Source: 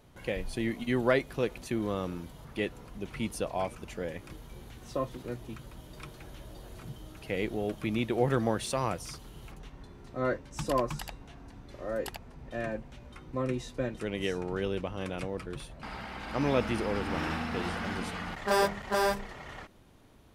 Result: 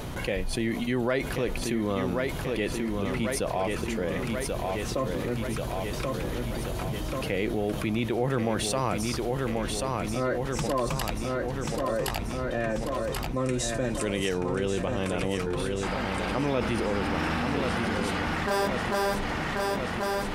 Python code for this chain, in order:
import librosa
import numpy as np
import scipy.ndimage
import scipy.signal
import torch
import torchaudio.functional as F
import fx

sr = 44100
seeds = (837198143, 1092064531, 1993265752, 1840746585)

p1 = fx.peak_eq(x, sr, hz=8300.0, db=13.5, octaves=1.1, at=(13.36, 14.29))
p2 = p1 + fx.echo_feedback(p1, sr, ms=1085, feedback_pct=55, wet_db=-7.5, dry=0)
p3 = fx.env_flatten(p2, sr, amount_pct=70)
y = p3 * 10.0 ** (-3.0 / 20.0)